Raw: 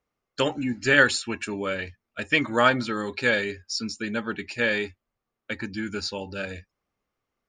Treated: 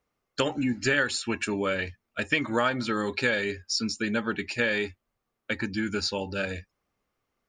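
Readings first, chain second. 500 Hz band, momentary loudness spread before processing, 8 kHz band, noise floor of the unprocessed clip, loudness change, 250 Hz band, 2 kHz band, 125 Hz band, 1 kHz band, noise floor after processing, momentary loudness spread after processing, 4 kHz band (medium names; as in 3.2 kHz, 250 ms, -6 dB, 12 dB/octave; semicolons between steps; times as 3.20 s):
-2.5 dB, 15 LU, 0.0 dB, -84 dBFS, -3.0 dB, 0.0 dB, -4.0 dB, -0.5 dB, -4.0 dB, -82 dBFS, 10 LU, -1.5 dB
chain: compression 4:1, threshold -25 dBFS, peak gain reduction 11 dB; trim +2.5 dB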